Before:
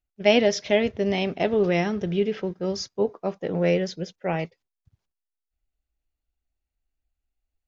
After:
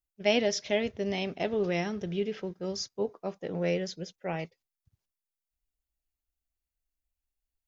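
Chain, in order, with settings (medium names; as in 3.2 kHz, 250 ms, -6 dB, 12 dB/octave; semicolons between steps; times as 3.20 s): treble shelf 6 kHz +11 dB; trim -7.5 dB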